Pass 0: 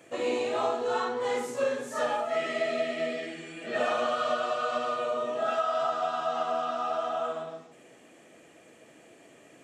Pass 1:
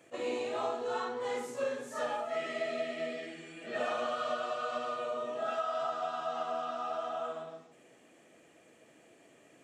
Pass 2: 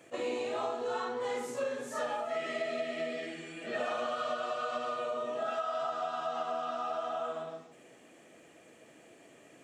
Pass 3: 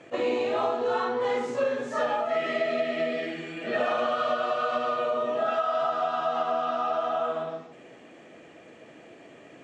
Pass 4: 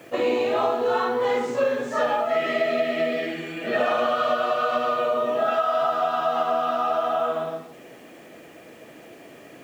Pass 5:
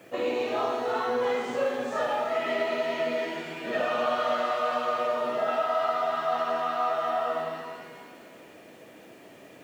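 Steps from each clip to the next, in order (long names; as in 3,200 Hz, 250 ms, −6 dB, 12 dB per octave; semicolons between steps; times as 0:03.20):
level that may rise only so fast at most 510 dB per second; level −6 dB
downward compressor 2 to 1, threshold −37 dBFS, peak gain reduction 5 dB; level +3.5 dB
high-frequency loss of the air 130 metres; level +8.5 dB
bit-depth reduction 10 bits, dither none; level +4 dB
reverb with rising layers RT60 1.7 s, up +7 semitones, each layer −8 dB, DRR 4 dB; level −6 dB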